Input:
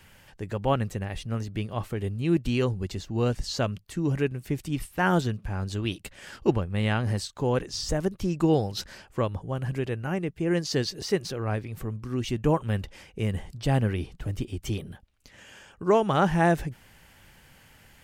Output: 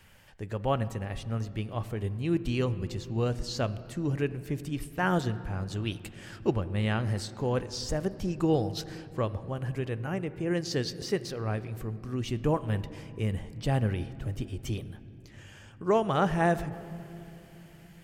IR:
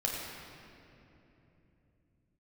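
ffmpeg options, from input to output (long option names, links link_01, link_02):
-filter_complex "[0:a]asplit=2[link_01][link_02];[link_02]lowpass=frequency=3100:poles=1[link_03];[1:a]atrim=start_sample=2205[link_04];[link_03][link_04]afir=irnorm=-1:irlink=0,volume=-16dB[link_05];[link_01][link_05]amix=inputs=2:normalize=0,volume=-4.5dB"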